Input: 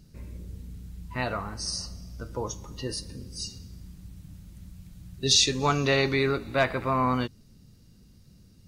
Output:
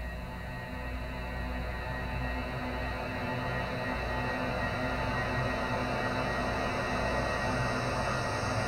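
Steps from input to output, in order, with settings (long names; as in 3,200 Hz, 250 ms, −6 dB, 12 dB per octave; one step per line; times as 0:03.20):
backwards echo 268 ms −16 dB
extreme stretch with random phases 19×, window 1.00 s, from 0:00.89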